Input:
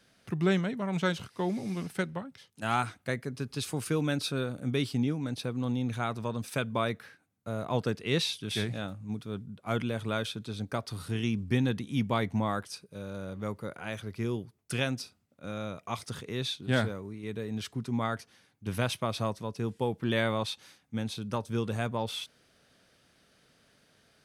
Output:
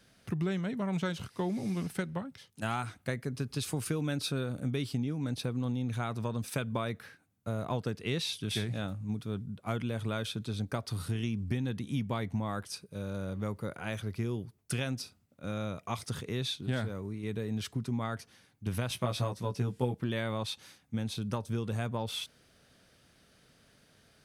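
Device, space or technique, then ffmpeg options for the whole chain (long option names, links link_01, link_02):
ASMR close-microphone chain: -filter_complex "[0:a]lowshelf=frequency=150:gain=7,acompressor=threshold=-29dB:ratio=6,highshelf=frequency=9100:gain=4,asettb=1/sr,asplit=3[link_01][link_02][link_03];[link_01]atrim=end=18.894[link_04];[link_02]atrim=start=18.89:end=19.95,asetpts=PTS-STARTPTS,afade=type=in:duration=0.004:curve=qsin,afade=type=out:start_time=1.056:duration=0.004:curve=qsin,asplit=2[link_05][link_06];[link_06]adelay=16,volume=-3dB[link_07];[link_05][link_07]amix=inputs=2:normalize=0,atrim=end_sample=46746[link_08];[link_03]atrim=start=19.946[link_09];[link_04][link_08]acrossfade=duration=0.004:curve1=hsin:curve2=qsin[link_10];[link_10][link_09]acrossfade=duration=0.004:curve1=qsin:curve2=hsin"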